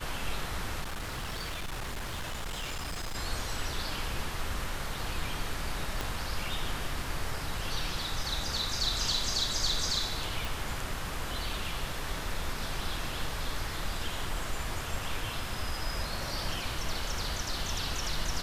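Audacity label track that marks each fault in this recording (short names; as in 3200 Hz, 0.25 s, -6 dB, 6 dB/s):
0.810000	3.160000	clipped -32.5 dBFS
6.010000	6.010000	pop
10.450000	10.450000	pop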